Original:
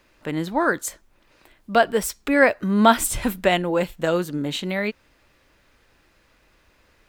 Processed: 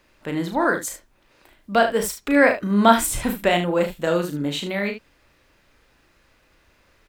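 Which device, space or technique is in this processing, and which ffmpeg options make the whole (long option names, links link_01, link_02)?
slapback doubling: -filter_complex "[0:a]asplit=3[link_01][link_02][link_03];[link_02]adelay=35,volume=-6dB[link_04];[link_03]adelay=74,volume=-10dB[link_05];[link_01][link_04][link_05]amix=inputs=3:normalize=0,volume=-1dB"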